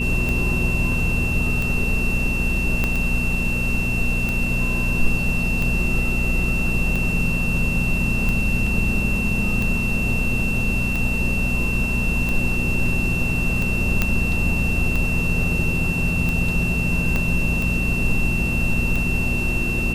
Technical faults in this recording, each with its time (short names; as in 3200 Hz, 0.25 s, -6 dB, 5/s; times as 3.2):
hum 60 Hz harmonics 4 -26 dBFS
tick 45 rpm -12 dBFS
tone 2700 Hz -24 dBFS
2.84 pop -8 dBFS
14.02 pop -4 dBFS
17.16 pop -9 dBFS